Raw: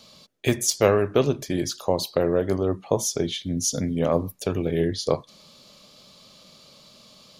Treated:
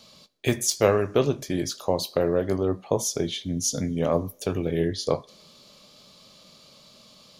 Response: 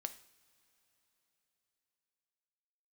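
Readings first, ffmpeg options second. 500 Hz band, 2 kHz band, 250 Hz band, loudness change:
−1.5 dB, −1.5 dB, −1.5 dB, −1.5 dB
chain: -filter_complex "[0:a]asplit=2[link_01][link_02];[link_02]highpass=300[link_03];[1:a]atrim=start_sample=2205,adelay=19[link_04];[link_03][link_04]afir=irnorm=-1:irlink=0,volume=-10dB[link_05];[link_01][link_05]amix=inputs=2:normalize=0,volume=-1.5dB"

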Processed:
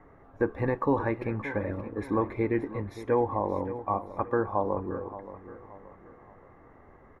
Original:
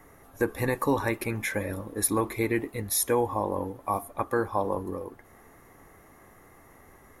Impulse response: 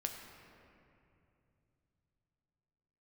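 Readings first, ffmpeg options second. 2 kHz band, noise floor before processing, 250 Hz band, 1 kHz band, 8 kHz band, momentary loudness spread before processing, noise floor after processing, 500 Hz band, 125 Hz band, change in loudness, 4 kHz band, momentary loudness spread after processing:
−5.0 dB, −55 dBFS, 0.0 dB, −0.5 dB, below −30 dB, 7 LU, −55 dBFS, 0.0 dB, 0.0 dB, −1.5 dB, below −15 dB, 17 LU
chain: -filter_complex "[0:a]lowpass=1500,asplit=2[link_01][link_02];[link_02]aecho=0:1:575|1150|1725|2300:0.2|0.0818|0.0335|0.0138[link_03];[link_01][link_03]amix=inputs=2:normalize=0"

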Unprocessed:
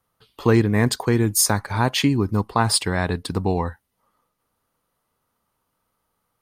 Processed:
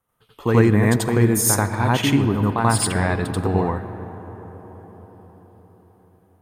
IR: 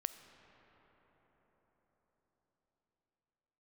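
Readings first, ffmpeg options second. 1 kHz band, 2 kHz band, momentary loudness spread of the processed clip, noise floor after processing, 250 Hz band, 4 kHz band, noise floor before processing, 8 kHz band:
+2.0 dB, +1.5 dB, 18 LU, −59 dBFS, +2.5 dB, −4.0 dB, −75 dBFS, +0.5 dB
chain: -filter_complex "[0:a]equalizer=frequency=4700:width_type=o:width=0.6:gain=-10,asplit=2[link_01][link_02];[1:a]atrim=start_sample=2205,adelay=87[link_03];[link_02][link_03]afir=irnorm=-1:irlink=0,volume=5.5dB[link_04];[link_01][link_04]amix=inputs=2:normalize=0,volume=-3.5dB"

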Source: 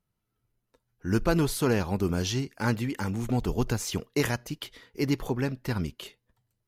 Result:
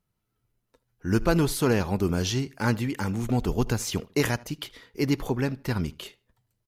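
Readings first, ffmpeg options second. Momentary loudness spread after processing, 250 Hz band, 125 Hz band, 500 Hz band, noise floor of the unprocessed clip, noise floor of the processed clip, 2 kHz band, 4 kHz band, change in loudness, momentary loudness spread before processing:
12 LU, +2.0 dB, +2.0 dB, +2.0 dB, −81 dBFS, −79 dBFS, +2.0 dB, +2.0 dB, +2.0 dB, 12 LU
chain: -filter_complex "[0:a]asplit=2[link_01][link_02];[link_02]adelay=77,lowpass=frequency=4000:poles=1,volume=-22dB,asplit=2[link_03][link_04];[link_04]adelay=77,lowpass=frequency=4000:poles=1,volume=0.28[link_05];[link_01][link_03][link_05]amix=inputs=3:normalize=0,volume=2dB"

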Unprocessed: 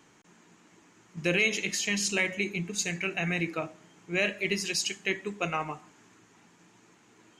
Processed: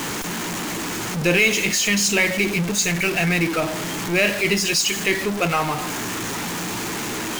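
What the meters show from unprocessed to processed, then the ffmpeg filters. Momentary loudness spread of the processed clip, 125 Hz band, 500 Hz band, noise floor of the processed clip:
9 LU, +11.5 dB, +10.5 dB, −27 dBFS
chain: -af "aeval=exprs='val(0)+0.5*0.0398*sgn(val(0))':channel_layout=same,volume=6.5dB"

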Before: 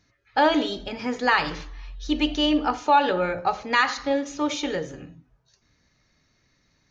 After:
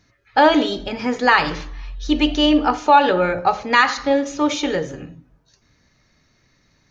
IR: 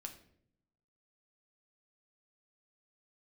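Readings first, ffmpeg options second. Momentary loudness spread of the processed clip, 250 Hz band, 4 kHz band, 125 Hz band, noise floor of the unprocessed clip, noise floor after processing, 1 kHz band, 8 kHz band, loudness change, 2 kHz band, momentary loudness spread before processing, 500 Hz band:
12 LU, +6.0 dB, +5.0 dB, +6.5 dB, −67 dBFS, −62 dBFS, +6.0 dB, can't be measured, +6.0 dB, +5.5 dB, 12 LU, +6.5 dB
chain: -filter_complex "[0:a]asplit=2[link_01][link_02];[1:a]atrim=start_sample=2205,lowpass=2800[link_03];[link_02][link_03]afir=irnorm=-1:irlink=0,volume=-10dB[link_04];[link_01][link_04]amix=inputs=2:normalize=0,volume=5dB"

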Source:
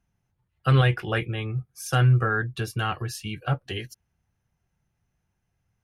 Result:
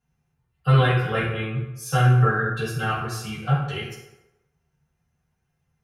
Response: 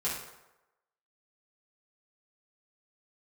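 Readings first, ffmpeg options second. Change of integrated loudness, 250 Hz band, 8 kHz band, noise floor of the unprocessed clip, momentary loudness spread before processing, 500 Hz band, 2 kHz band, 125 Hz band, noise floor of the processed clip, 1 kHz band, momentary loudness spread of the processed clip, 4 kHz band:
+2.5 dB, +3.0 dB, +1.0 dB, −77 dBFS, 12 LU, +3.5 dB, +2.5 dB, +2.5 dB, −75 dBFS, +4.0 dB, 13 LU, +0.5 dB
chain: -filter_complex "[1:a]atrim=start_sample=2205[link_01];[0:a][link_01]afir=irnorm=-1:irlink=0,volume=-3dB"

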